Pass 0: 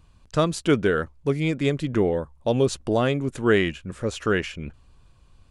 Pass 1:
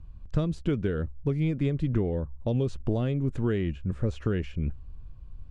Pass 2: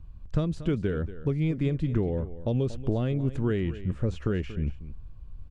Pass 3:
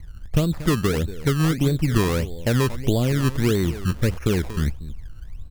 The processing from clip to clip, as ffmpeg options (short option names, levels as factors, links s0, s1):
-filter_complex "[0:a]acrossover=split=640|2300[s0][s1][s2];[s0]acompressor=threshold=0.0501:ratio=4[s3];[s1]acompressor=threshold=0.01:ratio=4[s4];[s2]acompressor=threshold=0.0178:ratio=4[s5];[s3][s4][s5]amix=inputs=3:normalize=0,aemphasis=mode=reproduction:type=riaa,volume=0.531"
-af "aecho=1:1:234:0.188"
-af "acrusher=samples=21:mix=1:aa=0.000001:lfo=1:lforange=21:lforate=1.6,volume=2.11"